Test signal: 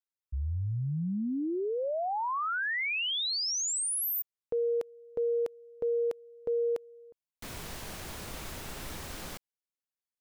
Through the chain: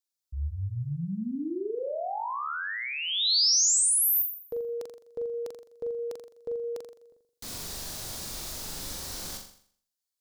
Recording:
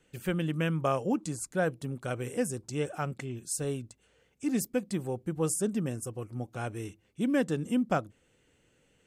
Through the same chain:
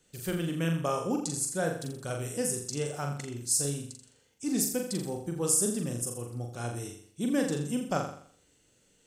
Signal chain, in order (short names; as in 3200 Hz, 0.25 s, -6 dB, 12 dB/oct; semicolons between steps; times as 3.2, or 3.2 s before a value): resonant high shelf 3400 Hz +8 dB, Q 1.5; flutter echo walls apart 7.2 m, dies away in 0.56 s; gain -2.5 dB